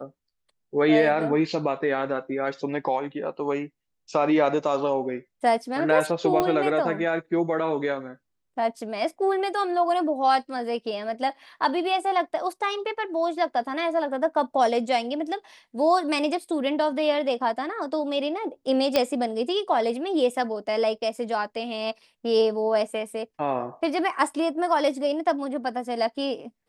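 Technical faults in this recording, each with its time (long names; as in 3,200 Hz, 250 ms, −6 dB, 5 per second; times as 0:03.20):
0:06.40: click −10 dBFS
0:18.96: click −7 dBFS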